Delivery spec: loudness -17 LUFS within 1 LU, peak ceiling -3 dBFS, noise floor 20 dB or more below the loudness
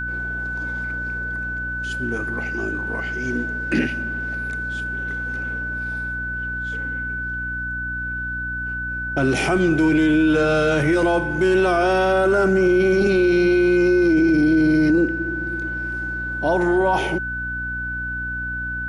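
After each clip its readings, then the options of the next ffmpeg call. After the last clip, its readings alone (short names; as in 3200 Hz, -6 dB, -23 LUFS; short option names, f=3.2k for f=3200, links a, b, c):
hum 60 Hz; harmonics up to 300 Hz; hum level -30 dBFS; steady tone 1500 Hz; tone level -25 dBFS; loudness -21.0 LUFS; peak -9.0 dBFS; loudness target -17.0 LUFS
-> -af "bandreject=f=60:t=h:w=4,bandreject=f=120:t=h:w=4,bandreject=f=180:t=h:w=4,bandreject=f=240:t=h:w=4,bandreject=f=300:t=h:w=4"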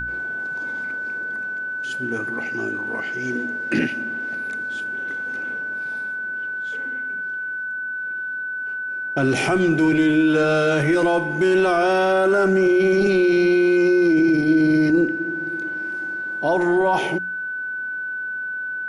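hum none; steady tone 1500 Hz; tone level -25 dBFS
-> -af "bandreject=f=1.5k:w=30"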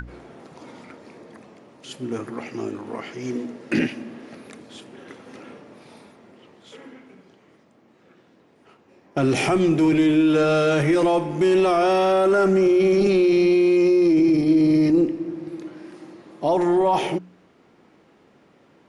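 steady tone none; loudness -19.5 LUFS; peak -9.5 dBFS; loudness target -17.0 LUFS
-> -af "volume=2.5dB"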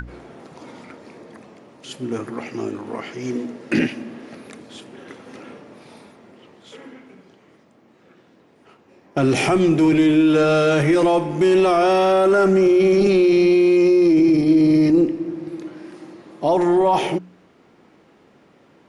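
loudness -17.0 LUFS; peak -7.0 dBFS; noise floor -54 dBFS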